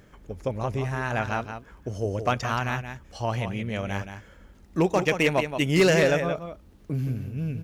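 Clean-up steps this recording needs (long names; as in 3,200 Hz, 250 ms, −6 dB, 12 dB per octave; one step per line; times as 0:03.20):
clipped peaks rebuilt −13 dBFS
echo removal 174 ms −8.5 dB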